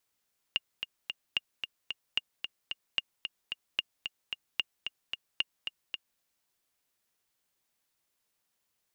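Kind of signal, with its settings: metronome 223 bpm, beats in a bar 3, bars 7, 2.83 kHz, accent 7 dB -14 dBFS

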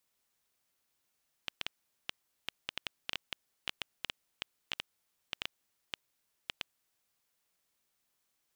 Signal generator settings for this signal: random clicks 4.9 per s -16.5 dBFS 5.57 s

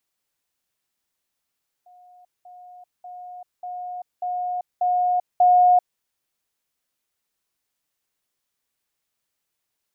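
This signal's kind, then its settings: level ladder 721 Hz -47.5 dBFS, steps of 6 dB, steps 7, 0.39 s 0.20 s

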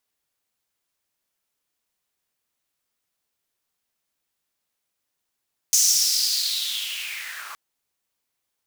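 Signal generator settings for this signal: swept filtered noise pink, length 1.82 s highpass, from 6.3 kHz, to 1.1 kHz, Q 5.1, linear, gain ramp -22 dB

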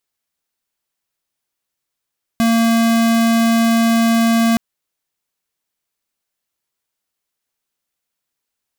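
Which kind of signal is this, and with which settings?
tone square 229 Hz -13.5 dBFS 2.17 s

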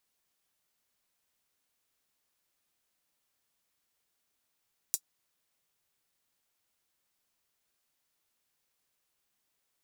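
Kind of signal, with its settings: closed hi-hat, high-pass 6.4 kHz, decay 0.07 s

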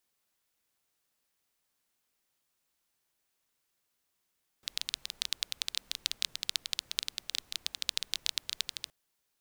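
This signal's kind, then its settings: rain from filtered ticks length 4.27 s, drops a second 13, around 3.8 kHz, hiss -24.5 dB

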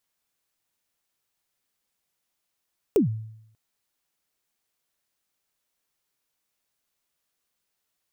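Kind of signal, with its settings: kick drum length 0.59 s, from 470 Hz, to 110 Hz, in 122 ms, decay 0.76 s, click on, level -13.5 dB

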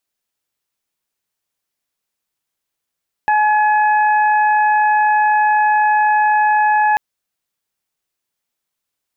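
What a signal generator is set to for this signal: steady additive tone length 3.69 s, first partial 848 Hz, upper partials -6.5/-19.5 dB, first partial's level -11.5 dB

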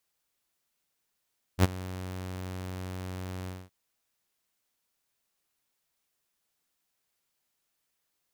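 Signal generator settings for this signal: ADSR saw 92.4 Hz, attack 59 ms, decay 23 ms, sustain -19.5 dB, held 1.89 s, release 225 ms -13.5 dBFS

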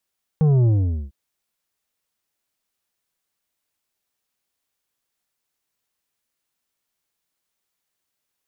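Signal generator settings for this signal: sub drop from 160 Hz, over 0.70 s, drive 8 dB, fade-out 0.45 s, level -14 dB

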